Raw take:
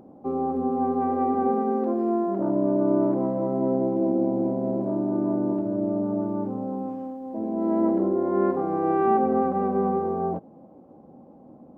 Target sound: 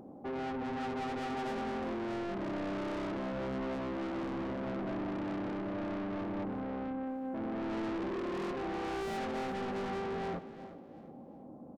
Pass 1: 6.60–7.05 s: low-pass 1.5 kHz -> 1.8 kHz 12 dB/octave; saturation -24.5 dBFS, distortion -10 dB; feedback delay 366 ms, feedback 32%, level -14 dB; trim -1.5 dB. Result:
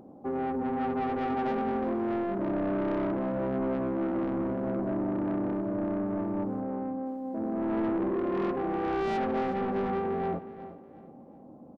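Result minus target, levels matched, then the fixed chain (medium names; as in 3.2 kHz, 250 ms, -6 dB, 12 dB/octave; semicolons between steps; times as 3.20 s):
saturation: distortion -5 dB
6.60–7.05 s: low-pass 1.5 kHz -> 1.8 kHz 12 dB/octave; saturation -34 dBFS, distortion -5 dB; feedback delay 366 ms, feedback 32%, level -14 dB; trim -1.5 dB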